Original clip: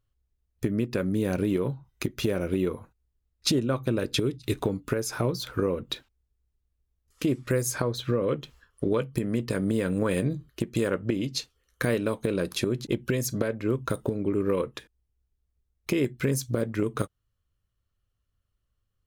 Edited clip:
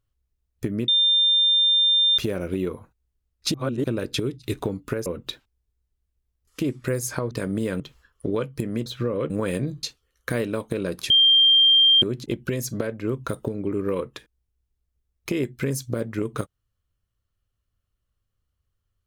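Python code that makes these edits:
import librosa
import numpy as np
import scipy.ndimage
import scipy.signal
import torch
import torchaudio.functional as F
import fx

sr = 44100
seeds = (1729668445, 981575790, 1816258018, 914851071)

y = fx.edit(x, sr, fx.bleep(start_s=0.88, length_s=1.3, hz=3600.0, db=-15.5),
    fx.reverse_span(start_s=3.54, length_s=0.3),
    fx.cut(start_s=5.06, length_s=0.63),
    fx.swap(start_s=7.94, length_s=0.44, other_s=9.44, other_length_s=0.49),
    fx.cut(start_s=10.46, length_s=0.9),
    fx.insert_tone(at_s=12.63, length_s=0.92, hz=3180.0, db=-12.5), tone=tone)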